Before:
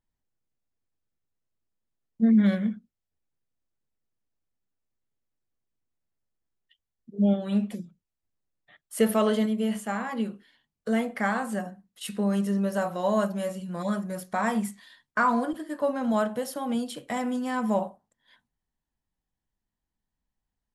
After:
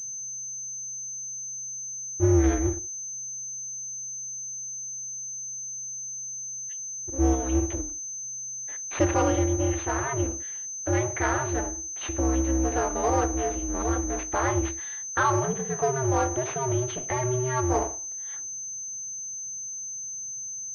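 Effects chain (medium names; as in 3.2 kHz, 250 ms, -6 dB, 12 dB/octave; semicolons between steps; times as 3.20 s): ring modulator 130 Hz; power-law waveshaper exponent 0.7; class-D stage that switches slowly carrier 6.2 kHz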